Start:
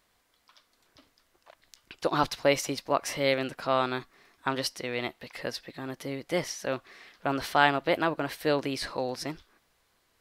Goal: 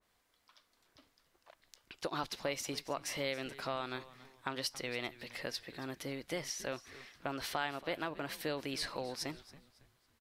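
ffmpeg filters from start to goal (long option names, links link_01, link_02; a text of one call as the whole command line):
ffmpeg -i in.wav -filter_complex "[0:a]acompressor=threshold=-31dB:ratio=3,asplit=4[link_01][link_02][link_03][link_04];[link_02]adelay=277,afreqshift=-130,volume=-17.5dB[link_05];[link_03]adelay=554,afreqshift=-260,volume=-25.9dB[link_06];[link_04]adelay=831,afreqshift=-390,volume=-34.3dB[link_07];[link_01][link_05][link_06][link_07]amix=inputs=4:normalize=0,adynamicequalizer=threshold=0.00355:dfrequency=1700:dqfactor=0.7:tfrequency=1700:tqfactor=0.7:attack=5:release=100:ratio=0.375:range=2:mode=boostabove:tftype=highshelf,volume=-5.5dB" out.wav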